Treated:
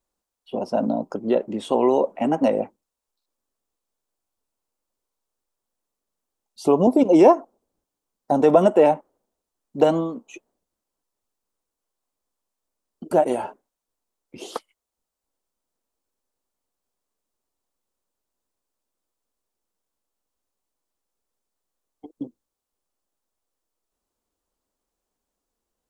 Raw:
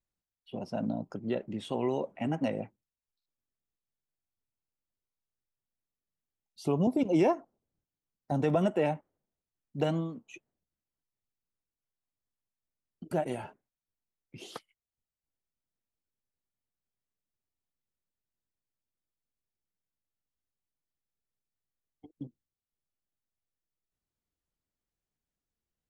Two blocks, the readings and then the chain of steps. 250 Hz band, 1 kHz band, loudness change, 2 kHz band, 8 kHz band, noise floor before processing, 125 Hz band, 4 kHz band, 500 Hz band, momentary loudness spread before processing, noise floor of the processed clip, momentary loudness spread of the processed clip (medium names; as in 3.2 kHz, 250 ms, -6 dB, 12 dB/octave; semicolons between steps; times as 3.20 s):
+10.0 dB, +13.5 dB, +11.5 dB, +6.0 dB, no reading, under -85 dBFS, +1.5 dB, +6.5 dB, +13.5 dB, 20 LU, -85 dBFS, 21 LU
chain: graphic EQ 125/250/500/1000/2000/8000 Hz -12/+4/+6/+7/-4/+4 dB; trim +7 dB